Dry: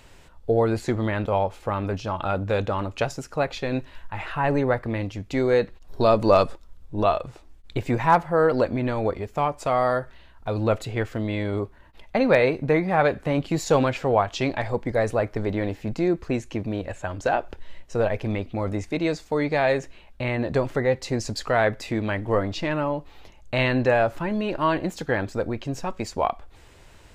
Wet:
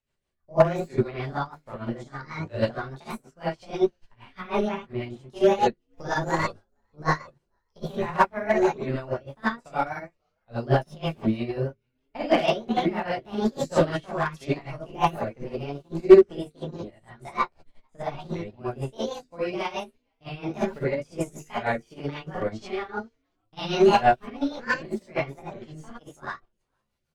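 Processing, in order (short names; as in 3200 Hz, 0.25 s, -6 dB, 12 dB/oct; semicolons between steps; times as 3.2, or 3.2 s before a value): repeated pitch sweeps +9 st, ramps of 0.798 s; notches 50/100/150/200/250/300/350/400/450 Hz; in parallel at 0 dB: limiter -16.5 dBFS, peak gain reduction 10 dB; on the sum: non-linear reverb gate 0.1 s rising, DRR -6.5 dB; overloaded stage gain 1.5 dB; rotary speaker horn 6.3 Hz; on a send: frequency-shifting echo 0.457 s, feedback 36%, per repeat -110 Hz, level -22.5 dB; on the sum: upward expander 2.5:1, over -30 dBFS; gain -1 dB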